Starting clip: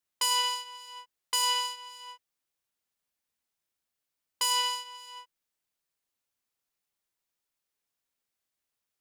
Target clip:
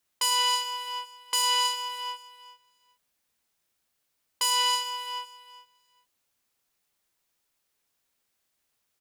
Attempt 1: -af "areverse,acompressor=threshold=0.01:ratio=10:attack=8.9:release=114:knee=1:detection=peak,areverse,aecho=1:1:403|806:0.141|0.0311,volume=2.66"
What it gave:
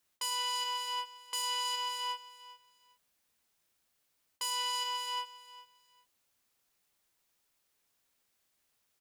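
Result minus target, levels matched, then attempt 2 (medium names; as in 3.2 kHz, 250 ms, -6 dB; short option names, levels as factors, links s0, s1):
compression: peak gain reduction +10 dB
-af "areverse,acompressor=threshold=0.0355:ratio=10:attack=8.9:release=114:knee=1:detection=peak,areverse,aecho=1:1:403|806:0.141|0.0311,volume=2.66"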